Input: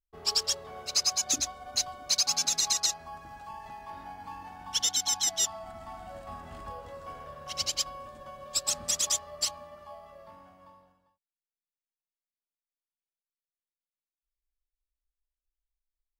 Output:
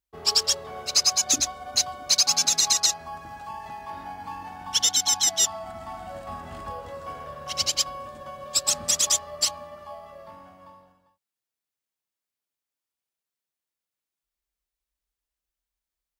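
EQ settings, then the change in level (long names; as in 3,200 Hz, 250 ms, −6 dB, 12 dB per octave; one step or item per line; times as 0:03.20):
high-pass filter 57 Hz
+6.0 dB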